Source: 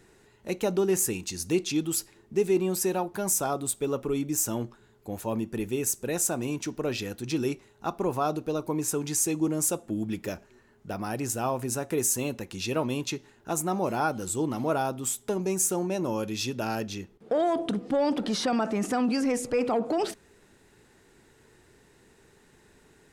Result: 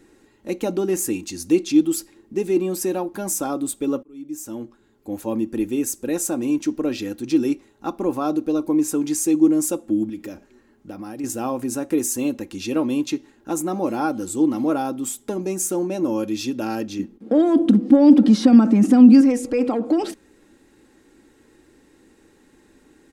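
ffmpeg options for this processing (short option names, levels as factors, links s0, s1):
-filter_complex "[0:a]asettb=1/sr,asplit=3[s0][s1][s2];[s0]atrim=end=10.094[s3];[s1]atrim=start=10.09:end=11.24,asetpts=PTS-STARTPTS,afade=t=in:d=0.004:c=qsin,afade=t=out:st=1.146:d=0.004:c=qsin,acompressor=threshold=0.0178:ratio=6:attack=3.2:release=140:knee=1:detection=peak[s4];[s2]atrim=start=11.236[s5];[s3][s4]acrossfade=d=0.004:c1=hsin:c2=qsin[s6];[s6][s5]acrossfade=d=0.004:c1=qsin:c2=hsin,asettb=1/sr,asplit=3[s7][s8][s9];[s7]atrim=end=16.994[s10];[s8]atrim=start=16.99:end=19.21,asetpts=PTS-STARTPTS,afade=t=in:d=0.004:c=qsin,afade=t=out:st=2.216:d=0.004:c=qsin,equalizer=f=220:t=o:w=0.76:g=11.5[s11];[s9]atrim=start=19.206[s12];[s10][s11]acrossfade=d=0.004:c1=hsin:c2=qsin[s13];[s13][s12]acrossfade=d=0.004:c1=qsin:c2=hsin,asplit=2[s14][s15];[s14]atrim=end=4.03,asetpts=PTS-STARTPTS,afade=t=out:st=4.026:d=0.004:c=hsin[s16];[s15]atrim=start=4.03,asetpts=PTS-STARTPTS,afade=t=in:d=1.2[s17];[s16][s17]concat=n=2:v=0:a=1,equalizer=f=310:w=2:g=10.5,aecho=1:1:3.7:0.42"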